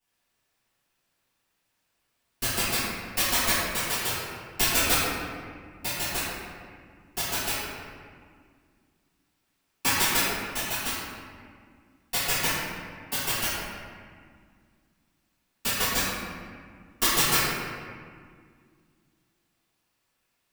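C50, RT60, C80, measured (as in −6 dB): −3.5 dB, 2.0 s, −0.5 dB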